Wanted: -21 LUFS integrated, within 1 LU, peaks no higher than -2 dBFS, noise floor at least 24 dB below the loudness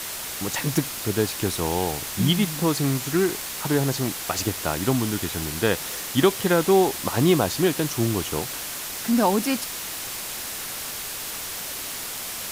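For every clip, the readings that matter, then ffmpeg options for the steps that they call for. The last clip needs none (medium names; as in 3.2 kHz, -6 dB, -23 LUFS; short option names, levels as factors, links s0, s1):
noise floor -33 dBFS; noise floor target -48 dBFS; loudness -24.0 LUFS; peak level -6.5 dBFS; loudness target -21.0 LUFS
-> -af "afftdn=nr=15:nf=-33"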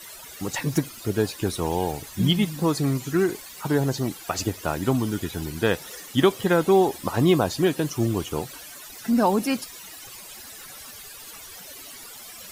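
noise floor -42 dBFS; noise floor target -49 dBFS
-> -af "afftdn=nr=7:nf=-42"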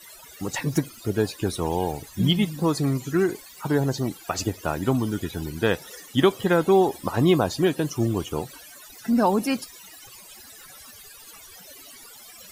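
noise floor -46 dBFS; noise floor target -49 dBFS
-> -af "afftdn=nr=6:nf=-46"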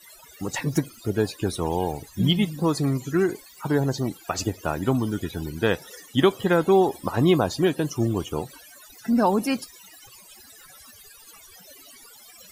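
noise floor -49 dBFS; loudness -24.5 LUFS; peak level -7.0 dBFS; loudness target -21.0 LUFS
-> -af "volume=1.5"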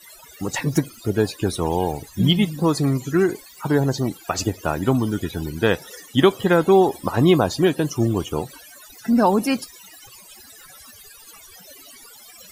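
loudness -21.0 LUFS; peak level -3.5 dBFS; noise floor -46 dBFS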